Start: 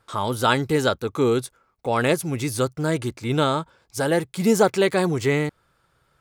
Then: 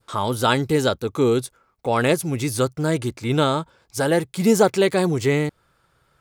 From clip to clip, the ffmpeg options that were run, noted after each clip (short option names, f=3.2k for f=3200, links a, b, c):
-af "adynamicequalizer=threshold=0.0158:dfrequency=1400:dqfactor=0.82:tfrequency=1400:tqfactor=0.82:attack=5:release=100:ratio=0.375:range=2.5:mode=cutabove:tftype=bell,volume=2dB"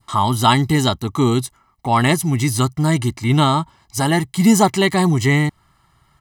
-af "aecho=1:1:1:0.91,volume=3dB"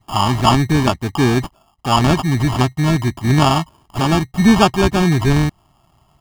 -filter_complex "[0:a]acrusher=samples=22:mix=1:aa=0.000001,acrossover=split=7600[a][b];[b]acompressor=threshold=-37dB:ratio=4:attack=1:release=60[c];[a][c]amix=inputs=2:normalize=0,volume=1.5dB"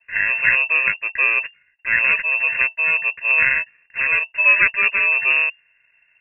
-af "lowpass=f=2.4k:t=q:w=0.5098,lowpass=f=2.4k:t=q:w=0.6013,lowpass=f=2.4k:t=q:w=0.9,lowpass=f=2.4k:t=q:w=2.563,afreqshift=-2800,volume=-3.5dB"